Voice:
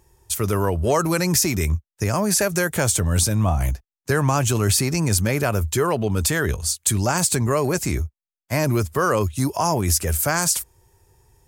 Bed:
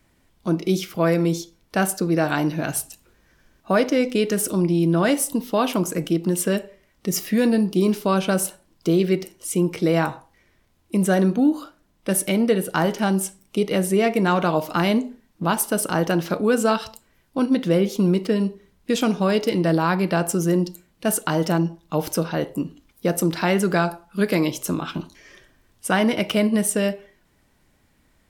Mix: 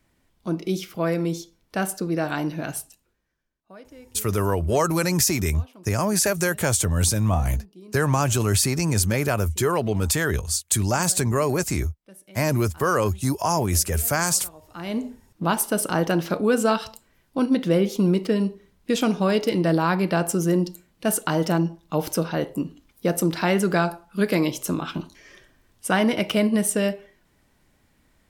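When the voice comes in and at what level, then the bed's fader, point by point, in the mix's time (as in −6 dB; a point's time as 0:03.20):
3.85 s, −1.5 dB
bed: 0:02.71 −4.5 dB
0:03.59 −26.5 dB
0:14.59 −26.5 dB
0:15.06 −1 dB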